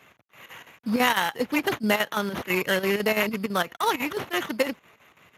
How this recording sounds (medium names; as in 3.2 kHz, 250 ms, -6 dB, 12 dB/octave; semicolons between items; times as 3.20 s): a quantiser's noise floor 10-bit, dither none; chopped level 6 Hz, depth 65%, duty 75%; aliases and images of a low sample rate 4.8 kHz, jitter 0%; Speex